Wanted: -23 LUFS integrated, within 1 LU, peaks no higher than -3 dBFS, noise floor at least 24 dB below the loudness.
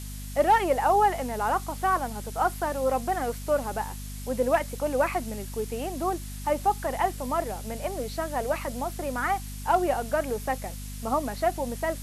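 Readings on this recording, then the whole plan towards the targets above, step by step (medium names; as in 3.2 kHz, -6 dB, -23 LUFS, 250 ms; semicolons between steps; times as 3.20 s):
hum 50 Hz; highest harmonic 250 Hz; hum level -35 dBFS; noise floor -37 dBFS; noise floor target -52 dBFS; loudness -27.5 LUFS; peak level -12.0 dBFS; loudness target -23.0 LUFS
-> de-hum 50 Hz, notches 5; noise reduction 15 dB, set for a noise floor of -37 dBFS; trim +4.5 dB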